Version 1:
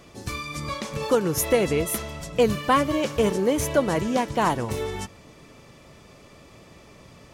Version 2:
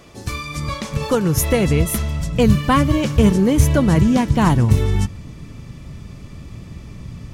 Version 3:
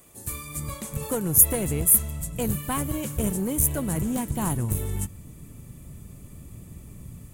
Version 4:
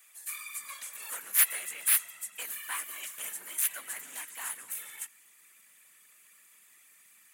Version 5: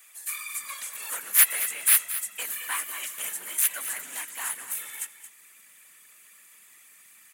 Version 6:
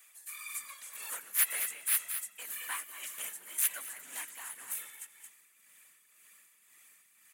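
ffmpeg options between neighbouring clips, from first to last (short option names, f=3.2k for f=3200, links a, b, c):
-af "asubboost=boost=8:cutoff=190,volume=4dB"
-filter_complex "[0:a]acrossover=split=740|5000[a][b][c];[a]dynaudnorm=f=200:g=3:m=5dB[d];[d][b][c]amix=inputs=3:normalize=0,aeval=exprs='clip(val(0),-1,0.237)':c=same,aexciter=amount=13.2:drive=4.9:freq=7.7k,volume=-13dB"
-af "afftfilt=real='hypot(re,im)*cos(2*PI*random(0))':imag='hypot(re,im)*sin(2*PI*random(1))':win_size=512:overlap=0.75,aeval=exprs='clip(val(0),-1,0.0376)':c=same,highpass=f=1.8k:t=q:w=2,volume=2dB"
-af "aecho=1:1:224:0.237,volume=5.5dB"
-af "tremolo=f=1.9:d=0.56,volume=-5.5dB"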